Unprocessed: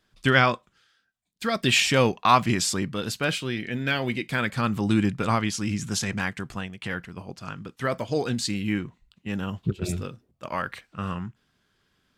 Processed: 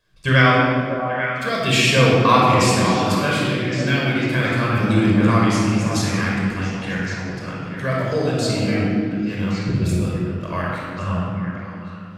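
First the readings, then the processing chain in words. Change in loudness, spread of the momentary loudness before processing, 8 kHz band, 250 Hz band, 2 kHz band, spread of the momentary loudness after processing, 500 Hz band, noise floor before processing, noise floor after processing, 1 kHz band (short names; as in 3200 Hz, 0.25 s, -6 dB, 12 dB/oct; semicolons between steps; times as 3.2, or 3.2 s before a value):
+6.5 dB, 16 LU, +2.5 dB, +8.0 dB, +6.5 dB, 12 LU, +8.0 dB, -71 dBFS, -33 dBFS, +6.5 dB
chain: on a send: delay with a stepping band-pass 0.279 s, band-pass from 260 Hz, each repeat 1.4 oct, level -1 dB; on the sum: shoebox room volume 3300 m³, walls mixed, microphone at 5.4 m; gain -2.5 dB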